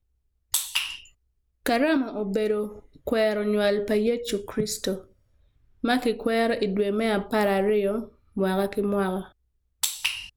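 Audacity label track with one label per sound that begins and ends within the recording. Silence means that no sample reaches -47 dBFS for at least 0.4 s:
0.530000	1.090000	sound
1.660000	5.060000	sound
5.830000	9.310000	sound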